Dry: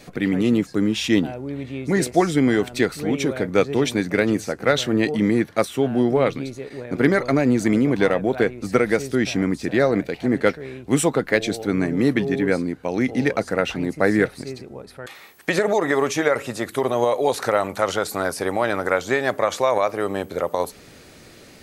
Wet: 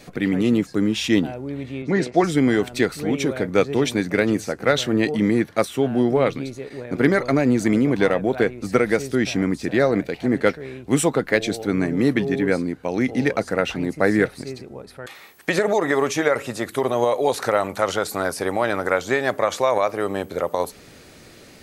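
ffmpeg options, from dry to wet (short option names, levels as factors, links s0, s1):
-filter_complex "[0:a]asettb=1/sr,asplit=3[s0][s1][s2];[s0]atrim=end=1.824[s3];[s1]atrim=start=1.82:end=2.24,asetpts=PTS-STARTPTS,afade=t=in:d=0.004:c=qsin,afade=t=out:st=0.416:d=0.004:c=qsin,highpass=120,lowpass=4200[s4];[s2]atrim=start=2.236[s5];[s3][s4]acrossfade=d=0.004:c1=hsin:c2=qsin[s6];[s6][s5]acrossfade=d=0.004:c1=qsin:c2=hsin"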